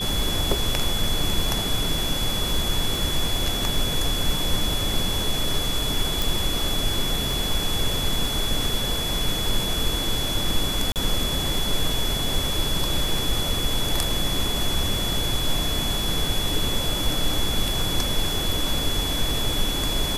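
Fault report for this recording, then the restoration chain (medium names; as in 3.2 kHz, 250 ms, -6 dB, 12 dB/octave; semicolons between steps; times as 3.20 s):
crackle 25 per s -28 dBFS
whine 3.4 kHz -27 dBFS
6.22 s: pop
10.92–10.96 s: dropout 38 ms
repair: de-click; band-stop 3.4 kHz, Q 30; interpolate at 10.92 s, 38 ms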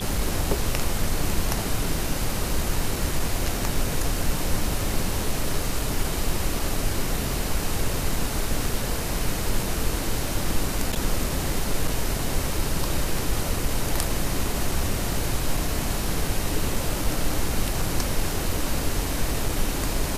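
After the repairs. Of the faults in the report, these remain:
6.22 s: pop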